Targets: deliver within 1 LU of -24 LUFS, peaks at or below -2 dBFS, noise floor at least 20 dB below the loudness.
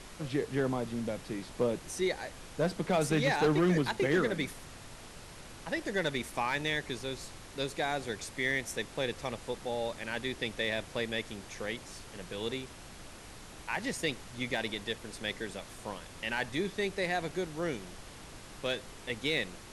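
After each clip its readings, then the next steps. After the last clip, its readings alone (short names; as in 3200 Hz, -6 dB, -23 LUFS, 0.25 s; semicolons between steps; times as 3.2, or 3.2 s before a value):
clipped 0.3%; flat tops at -21.0 dBFS; noise floor -49 dBFS; noise floor target -54 dBFS; loudness -34.0 LUFS; peak -21.0 dBFS; loudness target -24.0 LUFS
-> clip repair -21 dBFS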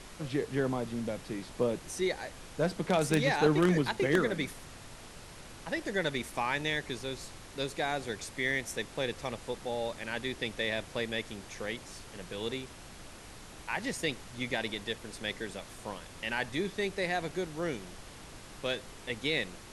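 clipped 0.0%; noise floor -49 dBFS; noise floor target -54 dBFS
-> noise print and reduce 6 dB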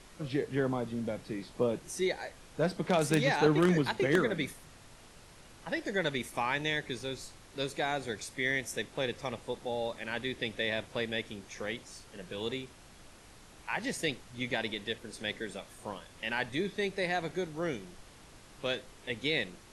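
noise floor -55 dBFS; loudness -33.5 LUFS; peak -12.0 dBFS; loudness target -24.0 LUFS
-> gain +9.5 dB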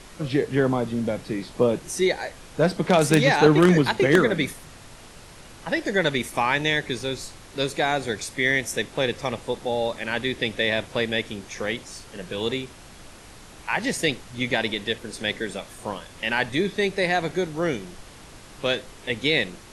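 loudness -24.0 LUFS; peak -2.5 dBFS; noise floor -46 dBFS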